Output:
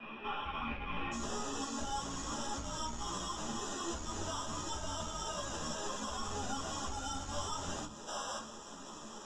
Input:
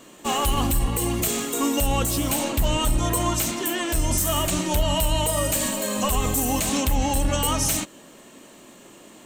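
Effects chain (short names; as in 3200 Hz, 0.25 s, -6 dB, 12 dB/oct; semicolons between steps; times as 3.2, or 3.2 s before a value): band shelf 1100 Hz +10 dB 1.2 oct; compressor, threshold -29 dBFS, peak gain reduction 15.5 dB; 8.07–8.38 painted sound noise 480–1700 Hz -32 dBFS; sample-and-hold 20×; soft clip -32.5 dBFS, distortion -11 dB; ladder low-pass 2500 Hz, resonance 90%, from 1.11 s 6900 Hz; shoebox room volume 250 m³, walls furnished, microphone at 1.3 m; ensemble effect; gain +9.5 dB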